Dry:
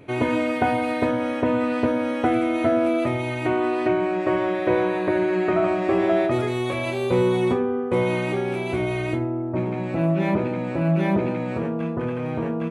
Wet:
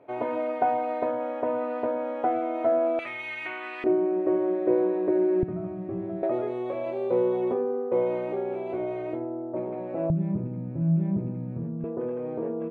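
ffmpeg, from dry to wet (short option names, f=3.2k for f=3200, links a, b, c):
-af "asetnsamples=n=441:p=0,asendcmd='2.99 bandpass f 2200;3.84 bandpass f 390;5.43 bandpass f 140;6.23 bandpass f 540;10.1 bandpass f 140;11.84 bandpass f 440',bandpass=f=700:t=q:w=1.9:csg=0"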